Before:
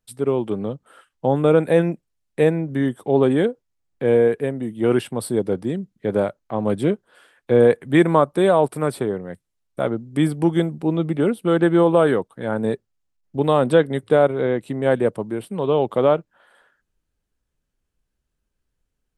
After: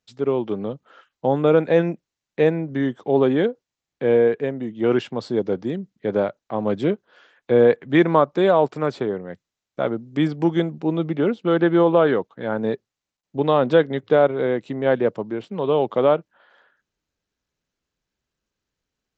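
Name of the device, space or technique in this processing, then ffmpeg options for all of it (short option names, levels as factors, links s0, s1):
Bluetooth headset: -af "highpass=f=160:p=1,aresample=16000,aresample=44100" -ar 16000 -c:a sbc -b:a 64k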